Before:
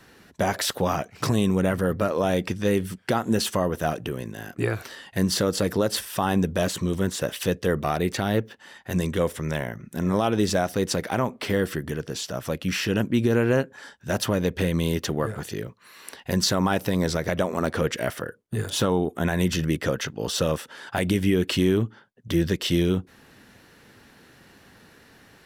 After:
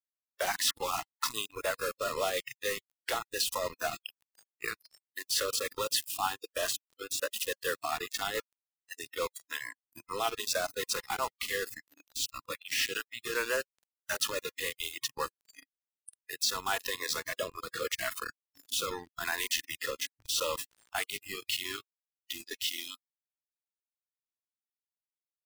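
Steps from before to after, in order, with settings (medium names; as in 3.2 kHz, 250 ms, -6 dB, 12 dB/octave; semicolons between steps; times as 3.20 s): rotary cabinet horn 7 Hz, later 0.8 Hz, at 14.69 s; Bessel high-pass 830 Hz, order 6; in parallel at -1 dB: peak limiter -24.5 dBFS, peak gain reduction 10.5 dB; on the sum: bit crusher 5-bit; spectral noise reduction 24 dB; trim -3.5 dB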